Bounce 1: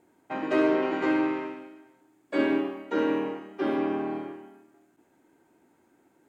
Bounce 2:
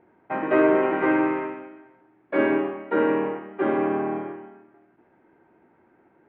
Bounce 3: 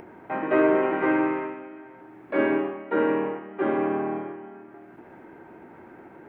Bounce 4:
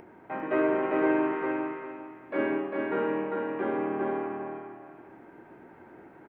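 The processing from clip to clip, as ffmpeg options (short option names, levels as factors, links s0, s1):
-af "lowpass=f=2300:w=0.5412,lowpass=f=2300:w=1.3066,equalizer=f=280:w=5.9:g=-8,volume=2"
-af "acompressor=mode=upward:threshold=0.0282:ratio=2.5,volume=0.841"
-af "aecho=1:1:400|800|1200:0.668|0.16|0.0385,volume=0.531"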